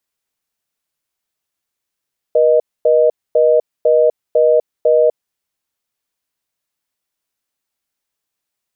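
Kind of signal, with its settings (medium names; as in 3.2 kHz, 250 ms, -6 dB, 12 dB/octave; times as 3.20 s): call progress tone reorder tone, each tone -11 dBFS 2.96 s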